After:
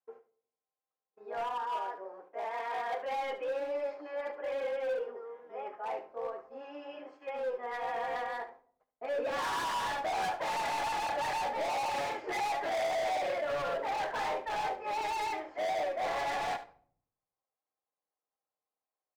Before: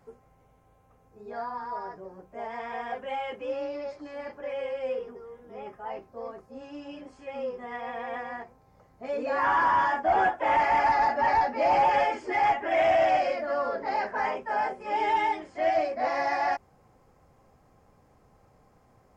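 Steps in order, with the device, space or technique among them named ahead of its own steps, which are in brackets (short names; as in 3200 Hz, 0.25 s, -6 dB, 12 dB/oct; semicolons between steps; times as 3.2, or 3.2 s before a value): walkie-talkie (BPF 530–2900 Hz; hard clip -34.5 dBFS, distortion -3 dB; gate -57 dBFS, range -32 dB); 1.58–3.03 HPF 270 Hz 12 dB/oct; dynamic EQ 490 Hz, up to +4 dB, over -51 dBFS, Q 0.75; echo 72 ms -14 dB; shoebox room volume 780 m³, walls furnished, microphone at 0.55 m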